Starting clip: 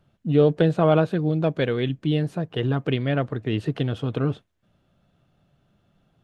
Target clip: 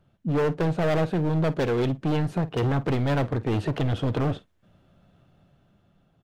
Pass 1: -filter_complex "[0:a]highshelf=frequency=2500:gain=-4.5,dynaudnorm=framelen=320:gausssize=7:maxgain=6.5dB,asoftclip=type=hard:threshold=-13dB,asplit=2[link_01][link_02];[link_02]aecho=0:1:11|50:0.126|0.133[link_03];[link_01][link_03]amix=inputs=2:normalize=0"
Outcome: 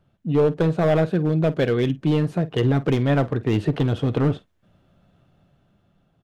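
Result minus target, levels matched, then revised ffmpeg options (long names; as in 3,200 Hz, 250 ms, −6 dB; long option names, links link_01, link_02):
hard clipping: distortion −7 dB
-filter_complex "[0:a]highshelf=frequency=2500:gain=-4.5,dynaudnorm=framelen=320:gausssize=7:maxgain=6.5dB,asoftclip=type=hard:threshold=-21dB,asplit=2[link_01][link_02];[link_02]aecho=0:1:11|50:0.126|0.133[link_03];[link_01][link_03]amix=inputs=2:normalize=0"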